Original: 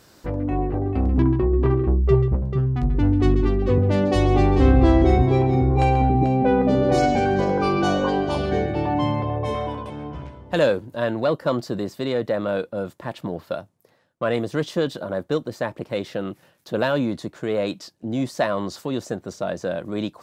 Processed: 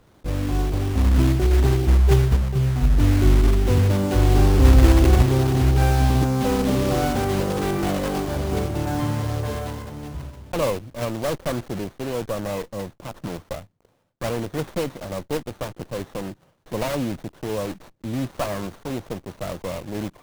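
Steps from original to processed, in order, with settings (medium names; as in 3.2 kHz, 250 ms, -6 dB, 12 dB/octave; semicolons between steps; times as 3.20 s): block-companded coder 3-bit; bass shelf 110 Hz +11 dB; sliding maximum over 17 samples; trim -4 dB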